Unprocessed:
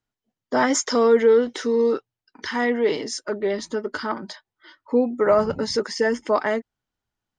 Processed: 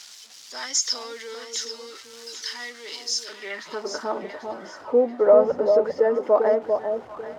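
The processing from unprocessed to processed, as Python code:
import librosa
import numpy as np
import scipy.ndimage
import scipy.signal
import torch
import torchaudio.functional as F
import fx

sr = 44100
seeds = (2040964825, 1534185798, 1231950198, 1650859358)

y = x + 0.5 * 10.0 ** (-31.0 / 20.0) * np.sign(x)
y = fx.filter_sweep_bandpass(y, sr, from_hz=5200.0, to_hz=580.0, start_s=3.22, end_s=3.95, q=1.9)
y = fx.echo_alternate(y, sr, ms=395, hz=1000.0, feedback_pct=51, wet_db=-4.5)
y = y * librosa.db_to_amplitude(3.5)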